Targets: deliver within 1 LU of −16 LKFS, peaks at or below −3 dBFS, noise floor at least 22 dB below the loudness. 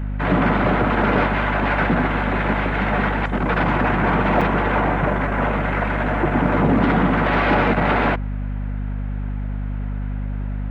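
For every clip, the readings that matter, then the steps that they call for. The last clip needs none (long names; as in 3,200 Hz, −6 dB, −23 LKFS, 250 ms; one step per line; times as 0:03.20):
number of dropouts 1; longest dropout 5.4 ms; mains hum 50 Hz; hum harmonics up to 250 Hz; level of the hum −22 dBFS; integrated loudness −20.0 LKFS; sample peak −5.5 dBFS; target loudness −16.0 LKFS
→ repair the gap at 0:04.41, 5.4 ms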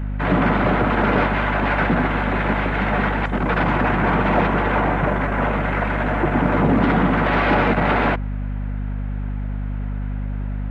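number of dropouts 0; mains hum 50 Hz; hum harmonics up to 250 Hz; level of the hum −22 dBFS
→ mains-hum notches 50/100/150/200/250 Hz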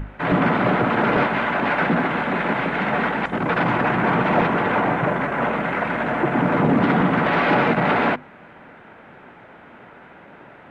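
mains hum none found; integrated loudness −20.0 LKFS; sample peak −6.0 dBFS; target loudness −16.0 LKFS
→ level +4 dB
brickwall limiter −3 dBFS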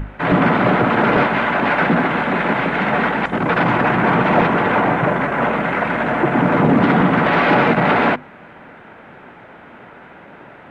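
integrated loudness −16.0 LKFS; sample peak −3.0 dBFS; background noise floor −41 dBFS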